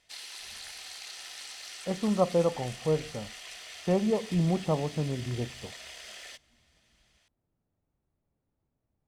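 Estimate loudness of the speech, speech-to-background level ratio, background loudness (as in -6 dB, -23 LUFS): -29.5 LUFS, 13.0 dB, -42.5 LUFS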